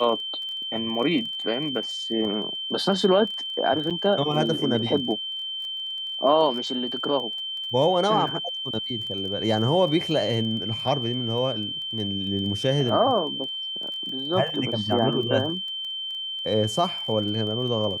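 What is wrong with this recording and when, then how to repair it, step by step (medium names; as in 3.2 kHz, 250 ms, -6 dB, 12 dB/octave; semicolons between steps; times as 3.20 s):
crackle 22 per s -33 dBFS
whine 3.1 kHz -29 dBFS
3.90–3.91 s: dropout 6.9 ms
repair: de-click; band-stop 3.1 kHz, Q 30; interpolate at 3.90 s, 6.9 ms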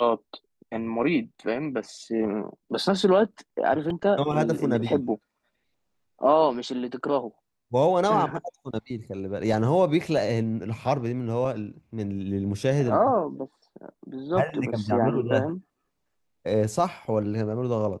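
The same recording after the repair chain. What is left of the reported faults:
nothing left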